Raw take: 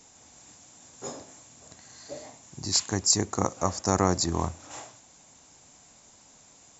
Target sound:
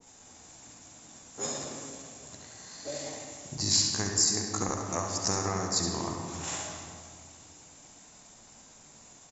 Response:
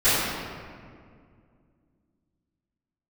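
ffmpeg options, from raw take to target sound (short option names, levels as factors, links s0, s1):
-filter_complex "[0:a]acompressor=threshold=0.0316:ratio=6,atempo=0.73,aecho=1:1:70:0.398,asplit=2[s0][s1];[1:a]atrim=start_sample=2205,adelay=58[s2];[s1][s2]afir=irnorm=-1:irlink=0,volume=0.075[s3];[s0][s3]amix=inputs=2:normalize=0,adynamicequalizer=threshold=0.00282:dfrequency=1500:dqfactor=0.7:tfrequency=1500:tqfactor=0.7:attack=5:release=100:ratio=0.375:range=3.5:mode=boostabove:tftype=highshelf"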